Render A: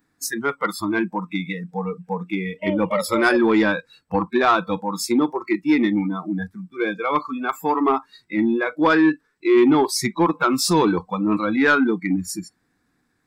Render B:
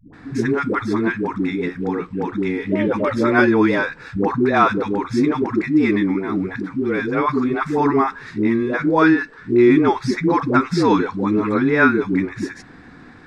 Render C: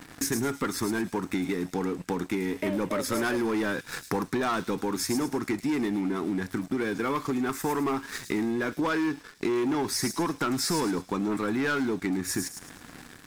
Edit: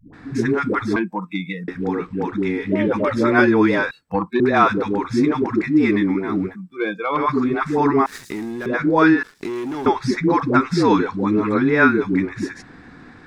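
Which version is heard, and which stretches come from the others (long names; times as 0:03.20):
B
0:00.96–0:01.68: punch in from A
0:03.91–0:04.40: punch in from A
0:06.51–0:07.19: punch in from A, crossfade 0.10 s
0:08.06–0:08.66: punch in from C
0:09.23–0:09.86: punch in from C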